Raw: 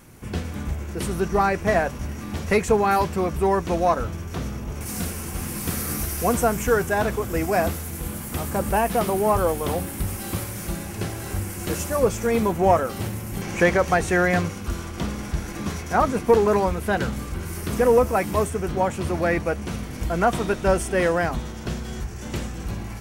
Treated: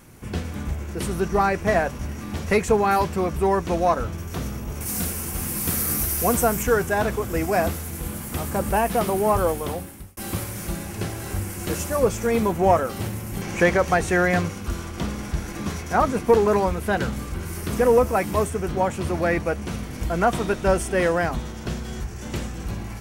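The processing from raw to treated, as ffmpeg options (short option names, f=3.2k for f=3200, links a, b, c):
-filter_complex "[0:a]asettb=1/sr,asplit=3[a][b][c];[a]atrim=end=4.184[d];[b]atrim=start=4.18:end=6.63,asetpts=PTS-STARTPTS,afade=t=in:d=0.004:c=qsin,afade=t=out:st=2.446:d=0.004:c=qsin,highshelf=f=10k:g=10[e];[c]atrim=start=6.626[f];[d][e]acrossfade=d=0.004:c1=hsin:c2=qsin[g];[g][f]acrossfade=d=0.004:c1=qsin:c2=hsin,asplit=2[h][i];[h]atrim=end=10.17,asetpts=PTS-STARTPTS,afade=t=out:st=9.48:d=0.69[j];[i]atrim=start=10.17,asetpts=PTS-STARTPTS,afade=t=in:d=0.004:c=hsin[k];[j][k]concat=n=2:v=0:a=1"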